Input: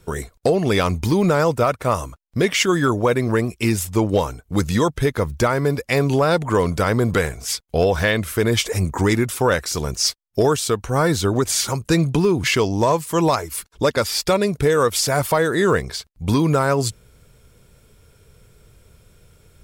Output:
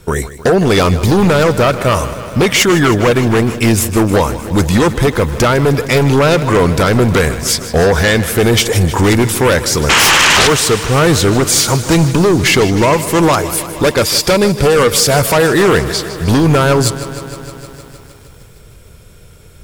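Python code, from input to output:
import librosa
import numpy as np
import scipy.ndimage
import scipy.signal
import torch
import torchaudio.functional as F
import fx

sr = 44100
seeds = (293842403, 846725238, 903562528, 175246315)

y = fx.spec_paint(x, sr, seeds[0], shape='noise', start_s=9.89, length_s=0.59, low_hz=800.0, high_hz=3300.0, level_db=-14.0)
y = fx.fold_sine(y, sr, drive_db=7, ceiling_db=-6.0)
y = fx.echo_crushed(y, sr, ms=155, feedback_pct=80, bits=6, wet_db=-14.5)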